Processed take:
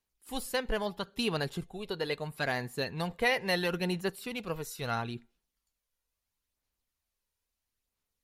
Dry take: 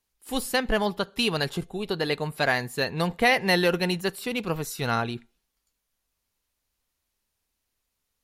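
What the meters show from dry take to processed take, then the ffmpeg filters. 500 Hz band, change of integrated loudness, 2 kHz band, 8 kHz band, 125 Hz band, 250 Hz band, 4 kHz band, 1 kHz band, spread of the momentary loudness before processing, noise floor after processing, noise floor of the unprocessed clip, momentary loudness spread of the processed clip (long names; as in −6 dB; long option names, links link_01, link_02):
−7.0 dB, −7.5 dB, −7.5 dB, −7.5 dB, −6.5 dB, −7.5 dB, −7.5 dB, −8.0 dB, 10 LU, below −85 dBFS, −80 dBFS, 11 LU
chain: -af "aphaser=in_gain=1:out_gain=1:delay=2.1:decay=0.33:speed=0.75:type=sinusoidal,volume=-8dB"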